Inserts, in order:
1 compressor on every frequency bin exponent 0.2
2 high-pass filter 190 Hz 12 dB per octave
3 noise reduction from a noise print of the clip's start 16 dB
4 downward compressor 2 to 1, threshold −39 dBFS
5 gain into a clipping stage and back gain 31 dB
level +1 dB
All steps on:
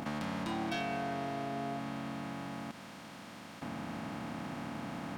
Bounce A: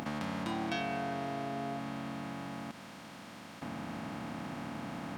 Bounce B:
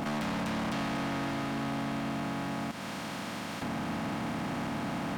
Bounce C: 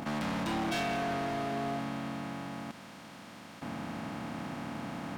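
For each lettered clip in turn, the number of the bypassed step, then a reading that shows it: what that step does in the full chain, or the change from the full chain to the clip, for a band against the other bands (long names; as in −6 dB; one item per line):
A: 5, distortion level −21 dB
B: 3, 500 Hz band −3.0 dB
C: 4, average gain reduction 3.0 dB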